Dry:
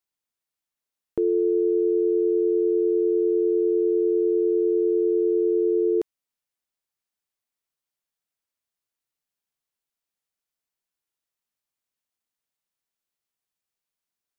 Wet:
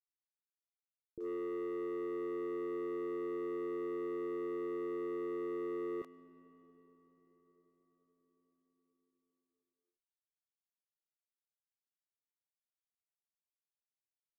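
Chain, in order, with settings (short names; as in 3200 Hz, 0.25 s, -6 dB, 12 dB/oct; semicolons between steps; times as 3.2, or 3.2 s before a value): gate -18 dBFS, range -25 dB; low shelf 170 Hz +7 dB; sample leveller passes 2; bands offset in time lows, highs 30 ms, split 640 Hz; on a send at -13 dB: reverb RT60 6.1 s, pre-delay 60 ms; on the sum: gain -3.5 dB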